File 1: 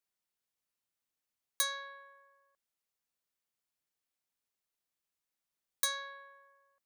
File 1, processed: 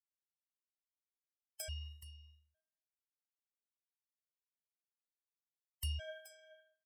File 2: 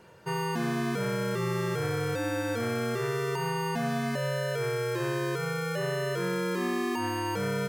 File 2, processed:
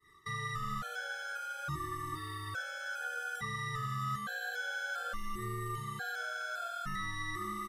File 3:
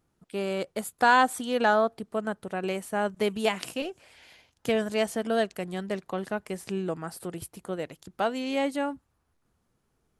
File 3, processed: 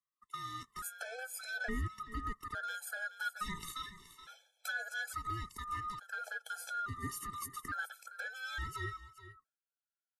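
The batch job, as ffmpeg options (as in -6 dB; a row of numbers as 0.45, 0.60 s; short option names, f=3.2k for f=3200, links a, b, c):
-filter_complex "[0:a]afftfilt=real='real(if(lt(b,960),b+48*(1-2*mod(floor(b/48),2)),b),0)':imag='imag(if(lt(b,960),b+48*(1-2*mod(floor(b/48),2)),b),0)':win_size=2048:overlap=0.75,agate=range=-33dB:threshold=-45dB:ratio=3:detection=peak,highshelf=f=6.6k:g=6,acrossover=split=200[a][b];[b]acompressor=threshold=-42dB:ratio=4[c];[a][c]amix=inputs=2:normalize=0,asplit=2[d][e];[e]alimiter=level_in=11dB:limit=-24dB:level=0:latency=1:release=15,volume=-11dB,volume=-0.5dB[f];[d][f]amix=inputs=2:normalize=0,acontrast=77,asoftclip=type=tanh:threshold=-21dB,flanger=delay=0.4:depth=7.5:regen=57:speed=0.36:shape=sinusoidal,aecho=1:1:425:0.2,aresample=32000,aresample=44100,afftfilt=real='re*gt(sin(2*PI*0.58*pts/sr)*(1-2*mod(floor(b*sr/1024/440),2)),0)':imag='im*gt(sin(2*PI*0.58*pts/sr)*(1-2*mod(floor(b*sr/1024/440),2)),0)':win_size=1024:overlap=0.75,volume=-2dB"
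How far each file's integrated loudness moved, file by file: -11.0, -8.0, -12.5 LU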